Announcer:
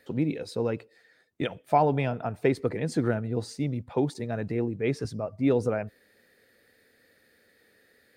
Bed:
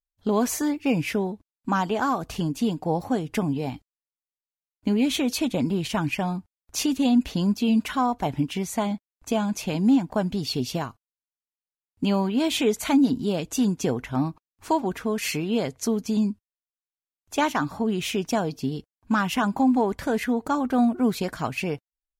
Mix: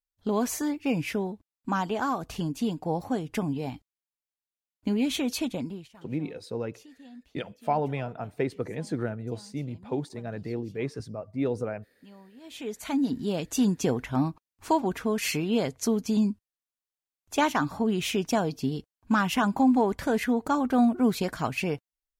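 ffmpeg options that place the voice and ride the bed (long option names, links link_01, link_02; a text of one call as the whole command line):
ffmpeg -i stem1.wav -i stem2.wav -filter_complex "[0:a]adelay=5950,volume=-4.5dB[link_01];[1:a]volume=23dB,afade=type=out:start_time=5.4:duration=0.5:silence=0.0630957,afade=type=in:start_time=12.41:duration=1.23:silence=0.0446684[link_02];[link_01][link_02]amix=inputs=2:normalize=0" out.wav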